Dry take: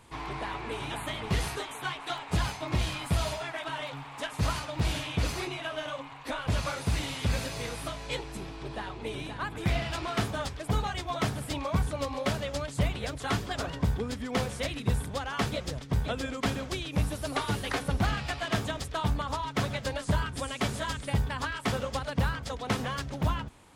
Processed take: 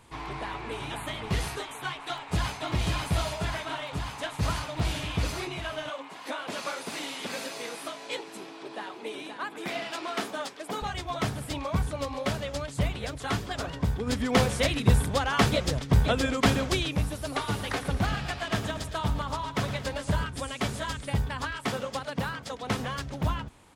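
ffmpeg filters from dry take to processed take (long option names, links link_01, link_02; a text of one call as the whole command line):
ffmpeg -i in.wav -filter_complex "[0:a]asplit=2[link_01][link_02];[link_02]afade=type=in:start_time=1.89:duration=0.01,afade=type=out:start_time=2.67:duration=0.01,aecho=0:1:540|1080|1620|2160|2700|3240|3780|4320|4860|5400|5940|6480:0.749894|0.599915|0.479932|0.383946|0.307157|0.245725|0.19658|0.157264|0.125811|0.100649|0.0805193|0.0644154[link_03];[link_01][link_03]amix=inputs=2:normalize=0,asettb=1/sr,asplit=3[link_04][link_05][link_06];[link_04]atrim=end=5.894[link_07];[link_05]atrim=start=5.89:end=10.82,asetpts=PTS-STARTPTS,afade=type=in:duration=0.004:curve=qsin,afade=type=out:start_time=4.926:duration=0.004:curve=qsin,highpass=frequency=240:width=0.5412,highpass=frequency=240:width=1.3066[link_08];[link_06]atrim=start=10.816[link_09];[link_07][link_08]acrossfade=duration=0.004:curve1=hsin:curve2=qsin[link_10];[link_10][link_09]acrossfade=duration=0.004:curve1=qsin:curve2=hsin,asplit=3[link_11][link_12][link_13];[link_11]afade=type=out:start_time=14.06:duration=0.02[link_14];[link_12]acontrast=86,afade=type=in:start_time=14.06:duration=0.02,afade=type=out:start_time=16.92:duration=0.02[link_15];[link_13]afade=type=in:start_time=16.92:duration=0.02[link_16];[link_14][link_15][link_16]amix=inputs=3:normalize=0,asplit=3[link_17][link_18][link_19];[link_17]afade=type=out:start_time=17.47:duration=0.02[link_20];[link_18]aecho=1:1:115|230|345|460|575:0.251|0.131|0.0679|0.0353|0.0184,afade=type=in:start_time=17.47:duration=0.02,afade=type=out:start_time=20.24:duration=0.02[link_21];[link_19]afade=type=in:start_time=20.24:duration=0.02[link_22];[link_20][link_21][link_22]amix=inputs=3:normalize=0,asettb=1/sr,asplit=3[link_23][link_24][link_25];[link_23]atrim=end=21.674[link_26];[link_24]atrim=start=21.67:end=22.63,asetpts=PTS-STARTPTS,afade=type=in:duration=0.004:curve=qsin,afade=type=out:start_time=0.956:duration=0.004:curve=qsin,highpass=150[link_27];[link_25]atrim=start=22.626[link_28];[link_26][link_27]acrossfade=duration=0.004:curve1=hsin:curve2=qsin[link_29];[link_29][link_28]acrossfade=duration=0.004:curve1=qsin:curve2=hsin" out.wav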